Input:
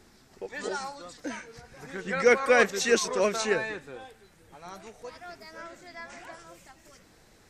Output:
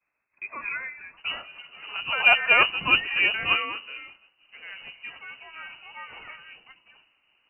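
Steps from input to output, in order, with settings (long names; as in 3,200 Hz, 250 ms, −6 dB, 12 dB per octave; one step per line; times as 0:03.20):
sub-octave generator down 2 octaves, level +3 dB
high-pass filter 340 Hz 24 dB per octave, from 0:01.17 47 Hz
downward expander −48 dBFS
voice inversion scrambler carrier 2,900 Hz
level +1.5 dB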